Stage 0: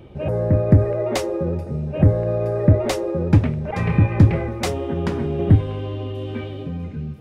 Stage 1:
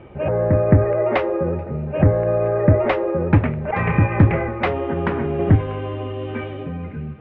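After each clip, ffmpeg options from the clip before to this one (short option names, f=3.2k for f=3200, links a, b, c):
-af "lowpass=f=2.6k:w=0.5412,lowpass=f=2.6k:w=1.3066,equalizer=f=1.5k:w=0.36:g=9,volume=-1.5dB"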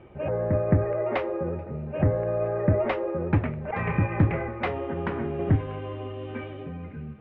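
-af "flanger=delay=2.5:depth=7.2:regen=86:speed=0.3:shape=triangular,volume=-3dB"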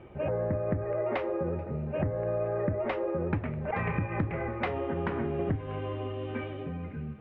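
-af "acompressor=threshold=-26dB:ratio=12"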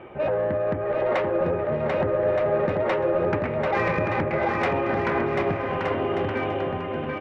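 -filter_complex "[0:a]asplit=2[a][b];[b]highpass=f=720:p=1,volume=19dB,asoftclip=type=tanh:threshold=-14dB[c];[a][c]amix=inputs=2:normalize=0,lowpass=f=2.2k:p=1,volume=-6dB,asplit=2[d][e];[e]aecho=0:1:740|1221|1534|1737|1869:0.631|0.398|0.251|0.158|0.1[f];[d][f]amix=inputs=2:normalize=0"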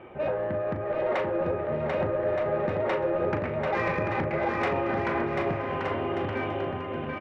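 -filter_complex "[0:a]asplit=2[a][b];[b]adelay=38,volume=-9dB[c];[a][c]amix=inputs=2:normalize=0,volume=-4dB"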